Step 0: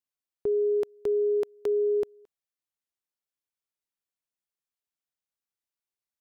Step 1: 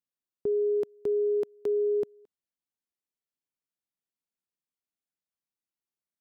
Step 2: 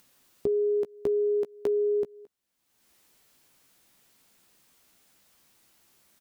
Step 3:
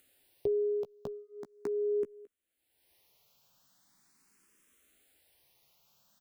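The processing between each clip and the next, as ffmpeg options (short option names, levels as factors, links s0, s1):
-af "equalizer=f=220:t=o:w=2:g=9.5,volume=0.473"
-filter_complex "[0:a]acompressor=threshold=0.0224:ratio=5,asplit=2[s0][s1];[s1]adelay=15,volume=0.376[s2];[s0][s2]amix=inputs=2:normalize=0,acompressor=mode=upward:threshold=0.00251:ratio=2.5,volume=2.24"
-filter_complex "[0:a]asplit=2[s0][s1];[s1]afreqshift=0.4[s2];[s0][s2]amix=inputs=2:normalize=1,volume=0.794"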